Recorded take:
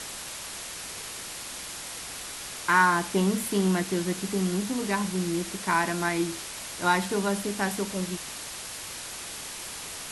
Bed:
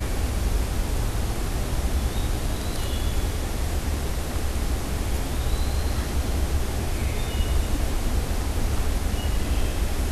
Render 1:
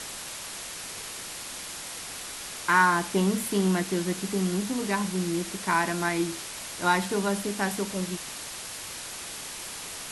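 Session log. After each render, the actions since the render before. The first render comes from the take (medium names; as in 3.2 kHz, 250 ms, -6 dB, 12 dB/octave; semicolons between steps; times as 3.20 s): de-hum 60 Hz, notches 2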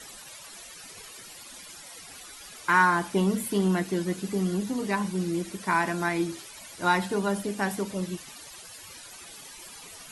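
noise reduction 14 dB, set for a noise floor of -39 dBFS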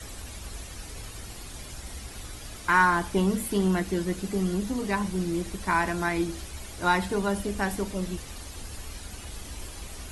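add bed -16.5 dB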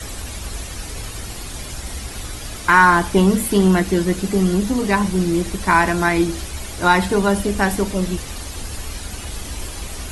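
trim +10 dB; peak limiter -2 dBFS, peak gain reduction 2 dB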